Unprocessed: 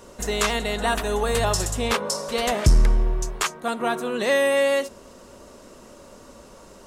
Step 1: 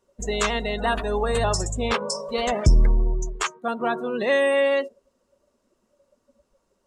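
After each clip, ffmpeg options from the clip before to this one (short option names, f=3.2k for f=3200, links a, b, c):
-af "afftdn=nr=25:nf=-29"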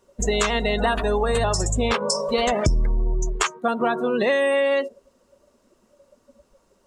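-af "acompressor=threshold=-26dB:ratio=6,volume=8dB"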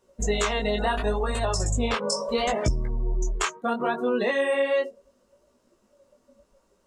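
-af "flanger=delay=16:depth=7.9:speed=0.72,volume=-1dB"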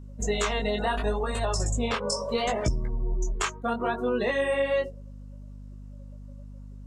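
-af "aeval=exprs='val(0)+0.0112*(sin(2*PI*50*n/s)+sin(2*PI*2*50*n/s)/2+sin(2*PI*3*50*n/s)/3+sin(2*PI*4*50*n/s)/4+sin(2*PI*5*50*n/s)/5)':c=same,volume=-2dB"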